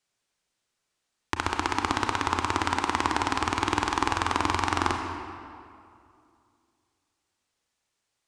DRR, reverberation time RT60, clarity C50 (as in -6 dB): 3.5 dB, 2.4 s, 4.5 dB